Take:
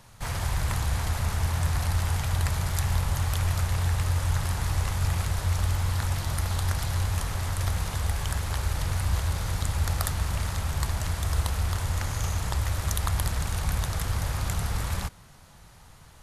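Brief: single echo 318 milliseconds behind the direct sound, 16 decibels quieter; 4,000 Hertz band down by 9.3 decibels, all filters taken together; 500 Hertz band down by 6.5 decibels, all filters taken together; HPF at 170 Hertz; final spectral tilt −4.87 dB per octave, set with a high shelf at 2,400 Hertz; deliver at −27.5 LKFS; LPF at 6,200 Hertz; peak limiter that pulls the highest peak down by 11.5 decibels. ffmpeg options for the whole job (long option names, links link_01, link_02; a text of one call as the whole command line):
ffmpeg -i in.wav -af "highpass=170,lowpass=6200,equalizer=frequency=500:width_type=o:gain=-8,highshelf=frequency=2400:gain=-6.5,equalizer=frequency=4000:width_type=o:gain=-5,alimiter=level_in=5dB:limit=-24dB:level=0:latency=1,volume=-5dB,aecho=1:1:318:0.158,volume=11.5dB" out.wav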